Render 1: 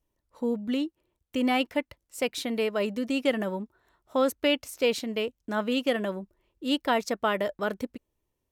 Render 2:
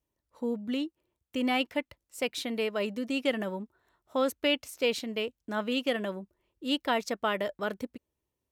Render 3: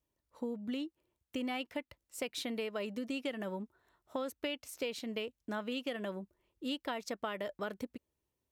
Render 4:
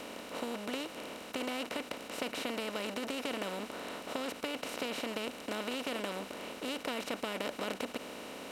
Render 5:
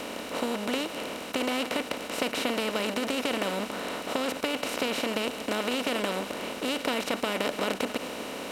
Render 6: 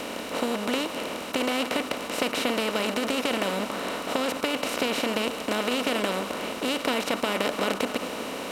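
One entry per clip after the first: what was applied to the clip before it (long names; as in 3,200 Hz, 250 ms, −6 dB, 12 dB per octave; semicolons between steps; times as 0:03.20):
high-pass filter 49 Hz; dynamic equaliser 3,000 Hz, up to +3 dB, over −40 dBFS, Q 0.94; level −3.5 dB
downward compressor, threshold −33 dBFS, peak gain reduction 11 dB; level −1.5 dB
compressor on every frequency bin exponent 0.2; level −7 dB
delay that plays each chunk backwards 147 ms, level −13 dB; level +8 dB
on a send at −16 dB: low-pass with resonance 1,200 Hz, resonance Q 4.2 + convolution reverb RT60 3.6 s, pre-delay 4 ms; on the sum: level +2.5 dB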